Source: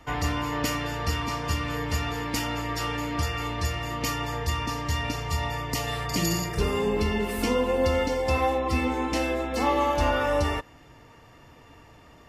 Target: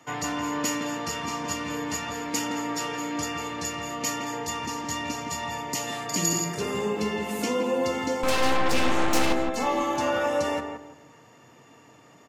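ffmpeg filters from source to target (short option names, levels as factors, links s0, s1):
-filter_complex "[0:a]highpass=f=130:w=0.5412,highpass=f=130:w=1.3066,equalizer=f=6800:t=o:w=0.28:g=10,asettb=1/sr,asplit=3[s0][s1][s2];[s0]atrim=end=8.234[s3];[s1]atrim=start=8.23:end=9.33,asetpts=PTS-STARTPTS,afade=t=in:d=0.004:c=qsin,afade=t=out:st=1.096:d=0.004:c=qsin,aeval=exprs='0.211*(cos(1*acos(clip(val(0)/0.211,-1,1)))-cos(1*PI/2))+0.0668*(cos(8*acos(clip(val(0)/0.211,-1,1)))-cos(8*PI/2))':c=same[s4];[s2]atrim=start=9.326[s5];[s3][s4]acrossfade=d=0.004:c1=hsin:c2=qsin[s6];[s6][s5]acrossfade=d=0.004:c1=qsin:c2=hsin,asplit=2[s7][s8];[s8]adelay=167,lowpass=f=1200:p=1,volume=0.668,asplit=2[s9][s10];[s10]adelay=167,lowpass=f=1200:p=1,volume=0.33,asplit=2[s11][s12];[s12]adelay=167,lowpass=f=1200:p=1,volume=0.33,asplit=2[s13][s14];[s14]adelay=167,lowpass=f=1200:p=1,volume=0.33[s15];[s9][s11][s13][s15]amix=inputs=4:normalize=0[s16];[s7][s16]amix=inputs=2:normalize=0,volume=0.794"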